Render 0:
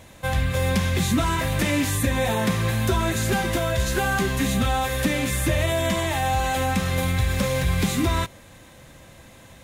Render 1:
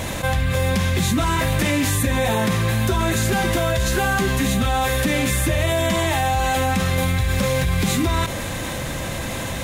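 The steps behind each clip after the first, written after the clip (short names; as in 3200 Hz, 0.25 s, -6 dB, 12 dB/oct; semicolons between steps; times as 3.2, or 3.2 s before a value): fast leveller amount 70%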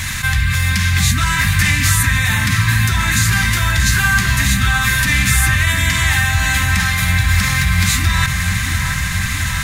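EQ curve 110 Hz 0 dB, 210 Hz -8 dB, 500 Hz -29 dB, 1200 Hz -1 dB, 1800 Hz +6 dB, 3200 Hz 0 dB, 4600 Hz +5 dB, 11000 Hz +2 dB; dark delay 0.68 s, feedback 69%, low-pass 1900 Hz, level -5 dB; gain +5 dB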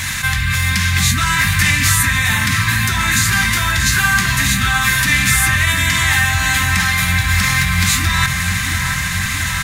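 low shelf 120 Hz -8 dB; doubler 22 ms -12 dB; gain +1.5 dB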